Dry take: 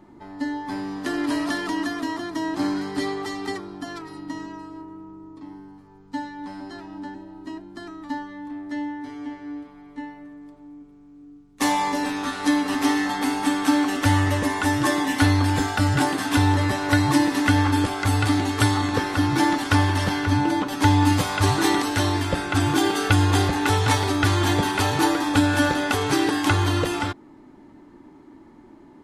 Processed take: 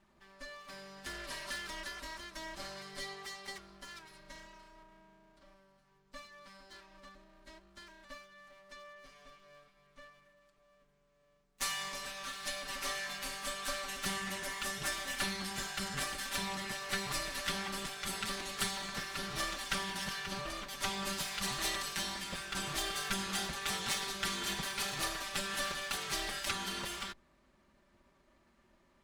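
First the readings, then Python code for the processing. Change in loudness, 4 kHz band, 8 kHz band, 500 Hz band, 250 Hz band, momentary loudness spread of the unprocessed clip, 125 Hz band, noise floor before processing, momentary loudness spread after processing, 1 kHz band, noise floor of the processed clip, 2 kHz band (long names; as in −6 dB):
−15.0 dB, −8.0 dB, −7.0 dB, −18.0 dB, −26.0 dB, 18 LU, −27.5 dB, −49 dBFS, 18 LU, −17.5 dB, −70 dBFS, −12.5 dB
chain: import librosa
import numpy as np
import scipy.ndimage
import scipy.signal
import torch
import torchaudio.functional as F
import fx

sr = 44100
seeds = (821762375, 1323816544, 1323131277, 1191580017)

y = fx.lower_of_two(x, sr, delay_ms=5.1)
y = fx.tone_stack(y, sr, knobs='5-5-5')
y = F.gain(torch.from_numpy(y), -1.0).numpy()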